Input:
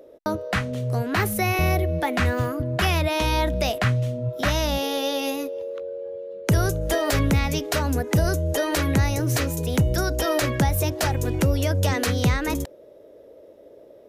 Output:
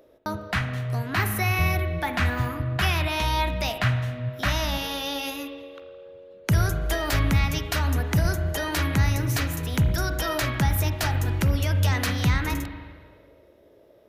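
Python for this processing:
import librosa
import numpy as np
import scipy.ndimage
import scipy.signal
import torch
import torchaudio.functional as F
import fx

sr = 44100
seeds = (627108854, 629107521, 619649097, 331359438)

y = fx.graphic_eq(x, sr, hz=(250, 500, 8000), db=(-4, -10, -5))
y = fx.rev_spring(y, sr, rt60_s=1.6, pass_ms=(39, 53), chirp_ms=35, drr_db=7.0)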